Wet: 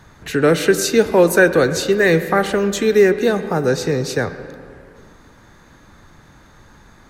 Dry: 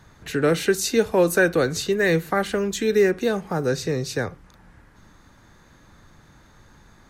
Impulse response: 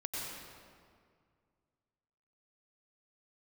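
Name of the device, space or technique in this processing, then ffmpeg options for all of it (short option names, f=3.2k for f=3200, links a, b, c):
filtered reverb send: -filter_complex "[0:a]asplit=2[a][b];[b]highpass=180,lowpass=3.4k[c];[1:a]atrim=start_sample=2205[d];[c][d]afir=irnorm=-1:irlink=0,volume=-11.5dB[e];[a][e]amix=inputs=2:normalize=0,volume=4.5dB"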